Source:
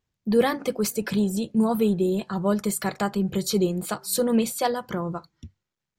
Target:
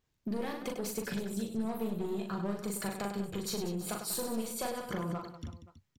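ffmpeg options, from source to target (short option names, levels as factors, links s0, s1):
-af "aeval=exprs='clip(val(0),-1,0.0531)':c=same,acompressor=threshold=0.0178:ratio=6,aecho=1:1:40|100|190|325|527.5:0.631|0.398|0.251|0.158|0.1"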